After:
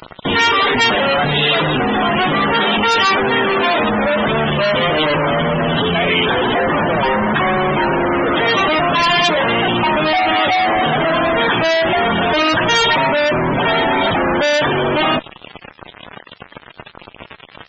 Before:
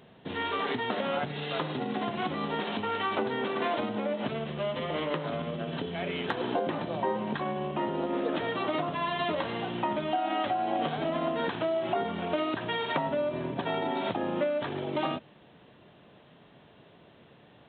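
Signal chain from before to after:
fuzz pedal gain 52 dB, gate −50 dBFS
spectral peaks only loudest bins 64
tilt shelving filter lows −5 dB, about 1,400 Hz
level +2 dB

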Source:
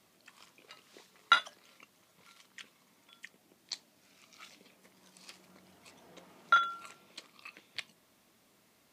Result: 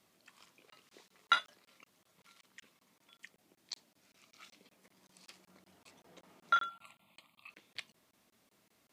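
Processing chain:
0:06.69–0:07.50: phaser with its sweep stopped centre 1,600 Hz, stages 6
regular buffer underruns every 0.19 s, samples 1,024, zero, from 0:00.70
level −4 dB

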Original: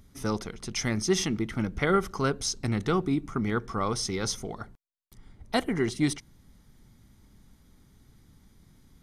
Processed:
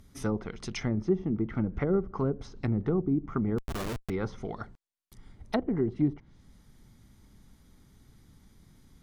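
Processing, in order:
treble cut that deepens with the level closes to 480 Hz, closed at −23 dBFS
0:03.58–0:04.10: comparator with hysteresis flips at −34.5 dBFS

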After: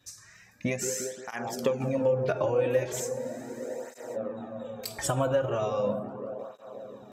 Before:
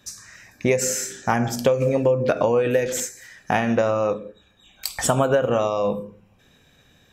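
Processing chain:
delay with a low-pass on its return 176 ms, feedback 81%, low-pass 950 Hz, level −9.5 dB
frozen spectrum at 0:03.21, 0.94 s
through-zero flanger with one copy inverted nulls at 0.38 Hz, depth 5 ms
level −5.5 dB

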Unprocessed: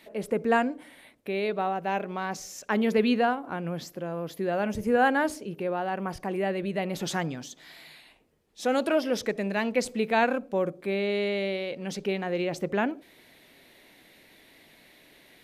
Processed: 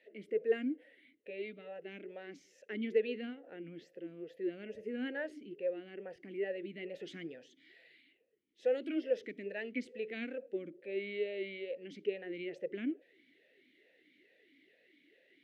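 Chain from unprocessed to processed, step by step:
0:01.30–0:01.80: notch comb filter 370 Hz
formant filter swept between two vowels e-i 2.3 Hz
level −1 dB

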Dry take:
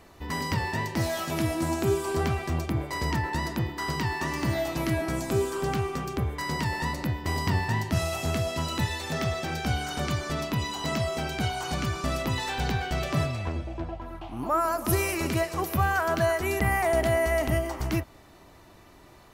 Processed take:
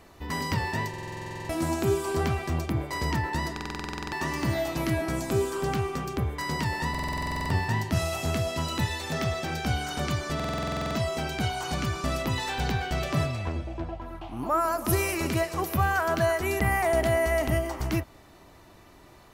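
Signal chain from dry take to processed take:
buffer that repeats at 0:00.89/0:03.52/0:06.90/0:10.35, samples 2,048, times 12

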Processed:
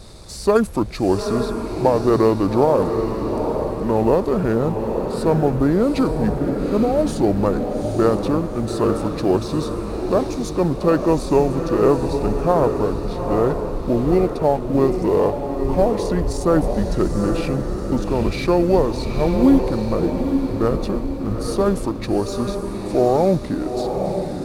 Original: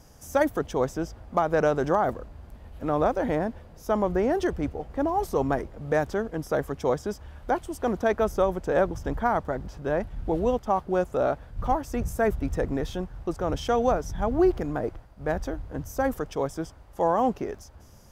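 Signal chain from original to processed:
mu-law and A-law mismatch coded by mu
feedback delay with all-pass diffusion 626 ms, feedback 46%, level −5.5 dB
wrong playback speed 45 rpm record played at 33 rpm
level +6 dB

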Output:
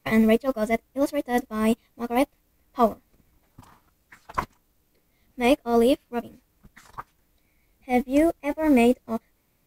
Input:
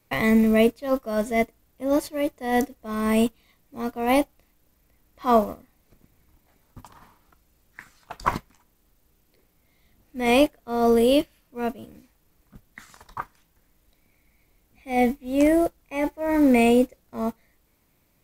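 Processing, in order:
phase-vocoder stretch with locked phases 0.53×

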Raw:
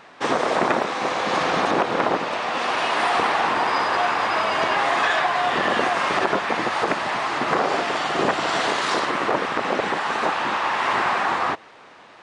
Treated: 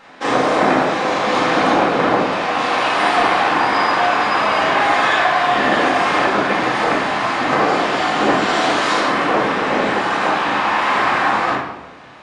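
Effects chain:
rectangular room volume 360 cubic metres, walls mixed, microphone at 2.1 metres
level −1 dB

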